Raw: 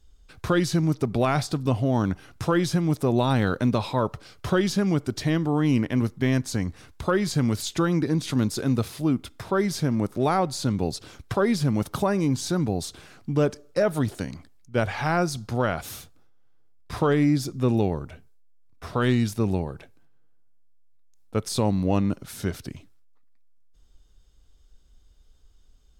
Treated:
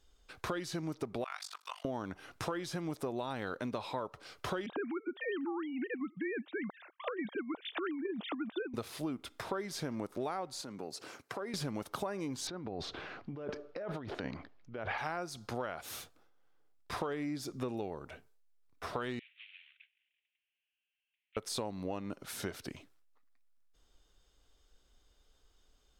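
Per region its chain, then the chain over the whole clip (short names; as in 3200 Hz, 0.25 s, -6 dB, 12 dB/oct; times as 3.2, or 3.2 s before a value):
1.24–1.85 HPF 1100 Hz 24 dB/oct + AM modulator 48 Hz, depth 100% + overloaded stage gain 17.5 dB
4.66–8.74 sine-wave speech + negative-ratio compressor -26 dBFS
10.61–11.54 HPF 150 Hz + bell 3500 Hz -8 dB 0.39 oct + compressor 3:1, threshold -37 dBFS
12.47–14.98 air absorption 260 m + negative-ratio compressor -33 dBFS
19.19–21.37 CVSD 16 kbps + steep high-pass 2400 Hz + air absorption 150 m
whole clip: tone controls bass -13 dB, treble -4 dB; compressor 6:1, threshold -35 dBFS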